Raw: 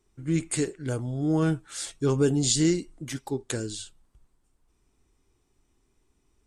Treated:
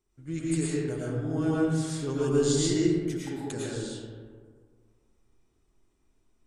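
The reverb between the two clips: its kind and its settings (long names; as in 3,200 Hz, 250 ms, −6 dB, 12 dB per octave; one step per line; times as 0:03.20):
comb and all-pass reverb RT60 1.8 s, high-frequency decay 0.4×, pre-delay 70 ms, DRR −6.5 dB
level −9 dB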